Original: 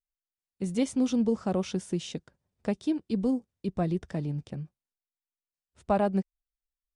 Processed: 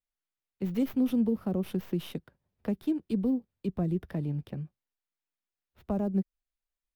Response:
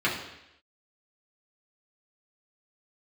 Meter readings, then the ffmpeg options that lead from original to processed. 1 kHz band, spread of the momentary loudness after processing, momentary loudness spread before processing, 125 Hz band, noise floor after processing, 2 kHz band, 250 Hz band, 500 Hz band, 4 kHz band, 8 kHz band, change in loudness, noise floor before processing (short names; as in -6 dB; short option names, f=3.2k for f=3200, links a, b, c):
-11.0 dB, 13 LU, 15 LU, 0.0 dB, under -85 dBFS, -7.0 dB, -0.5 dB, -4.5 dB, -6.5 dB, under -10 dB, -1.5 dB, under -85 dBFS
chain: -filter_complex "[0:a]acrossover=split=180|420|4500[a][b][c][d];[c]acompressor=threshold=-42dB:ratio=6[e];[d]aeval=exprs='abs(val(0))':c=same[f];[a][b][e][f]amix=inputs=4:normalize=0"